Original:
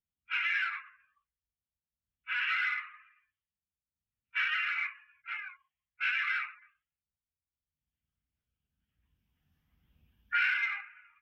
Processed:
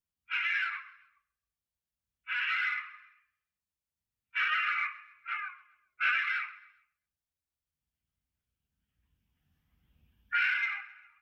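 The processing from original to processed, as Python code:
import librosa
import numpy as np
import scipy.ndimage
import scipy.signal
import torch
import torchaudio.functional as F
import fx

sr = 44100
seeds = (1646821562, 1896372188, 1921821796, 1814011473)

p1 = fx.small_body(x, sr, hz=(380.0, 610.0, 1200.0), ring_ms=30, db=fx.line((4.4, 12.0), (6.19, 16.0)), at=(4.4, 6.19), fade=0.02)
y = p1 + fx.echo_feedback(p1, sr, ms=132, feedback_pct=43, wet_db=-20.0, dry=0)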